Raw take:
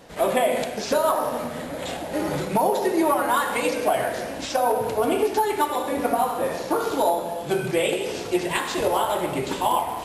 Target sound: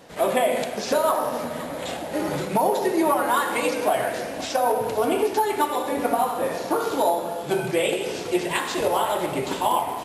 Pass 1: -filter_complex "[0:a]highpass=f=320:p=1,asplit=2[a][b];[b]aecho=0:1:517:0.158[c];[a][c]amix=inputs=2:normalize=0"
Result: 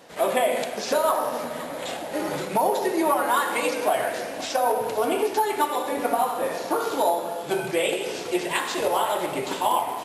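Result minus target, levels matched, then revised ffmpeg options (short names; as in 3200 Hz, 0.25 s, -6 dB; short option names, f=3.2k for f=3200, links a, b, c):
125 Hz band -5.0 dB
-filter_complex "[0:a]highpass=f=88:p=1,asplit=2[a][b];[b]aecho=0:1:517:0.158[c];[a][c]amix=inputs=2:normalize=0"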